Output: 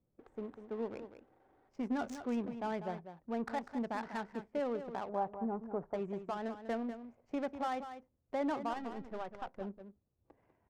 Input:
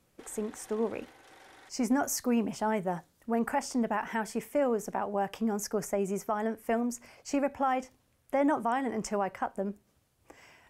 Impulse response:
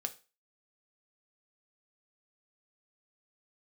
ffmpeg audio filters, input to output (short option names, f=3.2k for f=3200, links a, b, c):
-filter_complex "[0:a]asettb=1/sr,asplit=3[a][b][c];[a]atrim=end=8.734[d];[b]atrim=start=8.73:end=9.61,asetpts=PTS-STARTPTS,afade=t=in:d=0.004:c=qsin,afade=t=out:st=0.876:d=0.004:c=qsin,aeval=exprs='if(lt(val(0),0),0.447*val(0),val(0))':c=same[e];[c]atrim=start=9.606[f];[d][e]acrossfade=d=0.004:c1=hsin:c2=qsin[g];[g][f]acrossfade=d=0.004:c1=qsin:c2=hsin,adynamicsmooth=sensitivity=6:basefreq=590,asettb=1/sr,asplit=3[h][i][j];[h]atrim=end=5.094[k];[i]atrim=start=5.09:end=5.94,asetpts=PTS-STARTPTS,afade=t=in:d=0.004:c=qsin,afade=t=out:st=0.846:d=0.004:c=qsin,lowpass=f=990:t=q:w=1.9[l];[j]atrim=start=5.936[m];[k][l]acrossfade=d=0.004:c1=hsin:c2=qsin[n];[n][m]acrossfade=d=0.004:c1=qsin:c2=hsin,aecho=1:1:196:0.299,volume=-8dB"